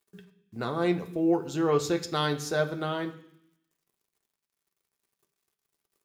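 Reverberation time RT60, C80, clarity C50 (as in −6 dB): 0.65 s, 16.0 dB, 13.0 dB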